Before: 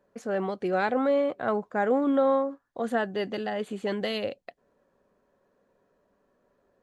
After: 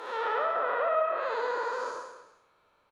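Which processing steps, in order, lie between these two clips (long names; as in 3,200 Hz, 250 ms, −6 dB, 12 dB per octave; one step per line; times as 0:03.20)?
spectrum smeared in time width 717 ms
wrong playback speed 33 rpm record played at 78 rpm
parametric band 350 Hz +3 dB 2.6 octaves
treble cut that deepens with the level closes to 1,300 Hz, closed at −25.5 dBFS
reverse bouncing-ball delay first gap 60 ms, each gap 1.15×, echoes 5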